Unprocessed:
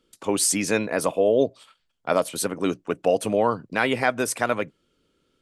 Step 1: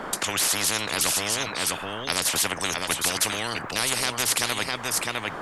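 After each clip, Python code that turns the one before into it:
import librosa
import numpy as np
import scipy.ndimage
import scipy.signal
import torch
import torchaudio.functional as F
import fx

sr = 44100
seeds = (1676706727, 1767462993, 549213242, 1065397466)

y = x + 10.0 ** (-13.5 / 20.0) * np.pad(x, (int(656 * sr / 1000.0), 0))[:len(x)]
y = fx.dmg_noise_band(y, sr, seeds[0], low_hz=170.0, high_hz=1500.0, level_db=-57.0)
y = fx.spectral_comp(y, sr, ratio=10.0)
y = F.gain(torch.from_numpy(y), 1.0).numpy()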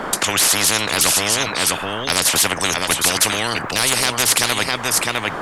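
y = np.clip(x, -10.0 ** (-14.0 / 20.0), 10.0 ** (-14.0 / 20.0))
y = F.gain(torch.from_numpy(y), 8.0).numpy()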